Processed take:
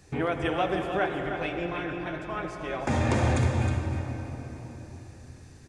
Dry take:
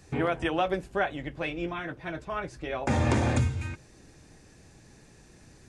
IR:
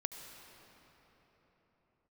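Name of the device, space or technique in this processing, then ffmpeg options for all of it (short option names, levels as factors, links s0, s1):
cave: -filter_complex "[0:a]aecho=1:1:314:0.376[s0];[1:a]atrim=start_sample=2205[s1];[s0][s1]afir=irnorm=-1:irlink=0,volume=1.12"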